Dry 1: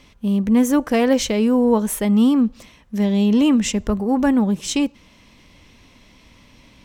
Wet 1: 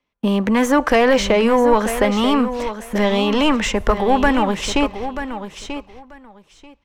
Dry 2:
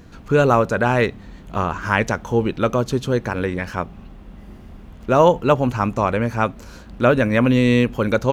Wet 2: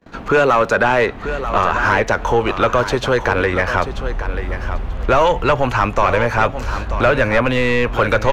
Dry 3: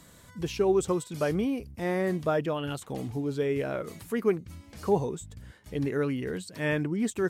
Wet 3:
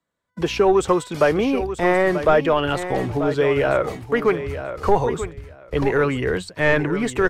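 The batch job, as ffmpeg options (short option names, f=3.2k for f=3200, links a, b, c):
-filter_complex "[0:a]agate=range=-38dB:threshold=-42dB:ratio=16:detection=peak,apsyclip=9.5dB,acrossover=split=210|680|1600[a][b][c][d];[a]acompressor=threshold=-27dB:ratio=4[e];[b]acompressor=threshold=-21dB:ratio=4[f];[c]acompressor=threshold=-22dB:ratio=4[g];[d]acompressor=threshold=-22dB:ratio=4[h];[e][f][g][h]amix=inputs=4:normalize=0,asplit=2[i][j];[j]highpass=f=720:p=1,volume=16dB,asoftclip=type=tanh:threshold=-1dB[k];[i][k]amix=inputs=2:normalize=0,lowpass=f=1.2k:p=1,volume=-6dB,asubboost=boost=10:cutoff=69,aecho=1:1:937|1874:0.299|0.0508"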